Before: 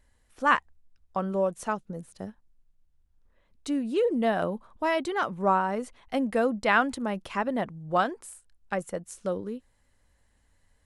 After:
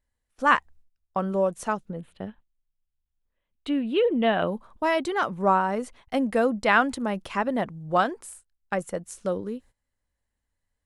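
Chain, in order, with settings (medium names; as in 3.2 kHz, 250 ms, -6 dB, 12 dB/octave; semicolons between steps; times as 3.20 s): gate -52 dBFS, range -17 dB; 1.90–4.47 s: resonant high shelf 4.3 kHz -11 dB, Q 3; trim +2.5 dB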